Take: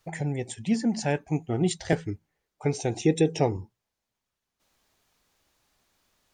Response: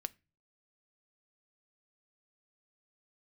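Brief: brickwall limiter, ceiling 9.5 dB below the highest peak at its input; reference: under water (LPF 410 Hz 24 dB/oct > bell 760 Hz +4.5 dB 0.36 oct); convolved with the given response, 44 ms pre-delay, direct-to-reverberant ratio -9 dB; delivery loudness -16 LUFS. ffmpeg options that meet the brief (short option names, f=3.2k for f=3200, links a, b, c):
-filter_complex "[0:a]alimiter=limit=-18dB:level=0:latency=1,asplit=2[a][b];[1:a]atrim=start_sample=2205,adelay=44[c];[b][c]afir=irnorm=-1:irlink=0,volume=11dB[d];[a][d]amix=inputs=2:normalize=0,lowpass=f=410:w=0.5412,lowpass=f=410:w=1.3066,equalizer=f=760:t=o:w=0.36:g=4.5,volume=5.5dB"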